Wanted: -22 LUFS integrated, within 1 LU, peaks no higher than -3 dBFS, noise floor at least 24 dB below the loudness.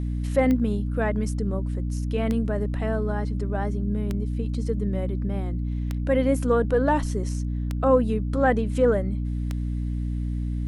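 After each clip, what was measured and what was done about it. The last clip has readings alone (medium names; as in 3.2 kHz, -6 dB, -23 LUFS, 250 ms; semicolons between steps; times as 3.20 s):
clicks found 6; hum 60 Hz; highest harmonic 300 Hz; hum level -25 dBFS; loudness -25.5 LUFS; peak level -7.0 dBFS; loudness target -22.0 LUFS
-> de-click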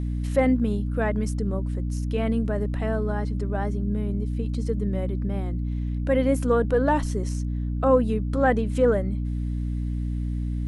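clicks found 0; hum 60 Hz; highest harmonic 300 Hz; hum level -25 dBFS
-> de-hum 60 Hz, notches 5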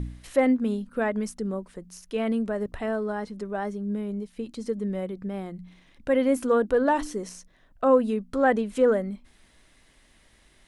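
hum not found; loudness -26.5 LUFS; peak level -8.5 dBFS; loudness target -22.0 LUFS
-> trim +4.5 dB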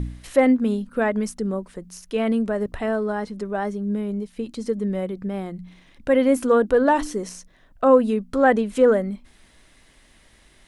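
loudness -22.0 LUFS; peak level -4.0 dBFS; noise floor -55 dBFS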